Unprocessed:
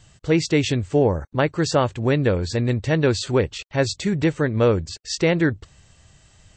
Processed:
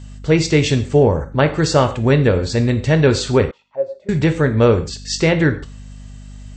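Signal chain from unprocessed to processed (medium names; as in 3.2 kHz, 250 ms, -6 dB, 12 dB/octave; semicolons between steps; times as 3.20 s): gated-style reverb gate 170 ms falling, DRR 7 dB; hum 50 Hz, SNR 19 dB; 3.51–4.09 s: auto-wah 540–1300 Hz, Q 10, down, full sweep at -21 dBFS; trim +4 dB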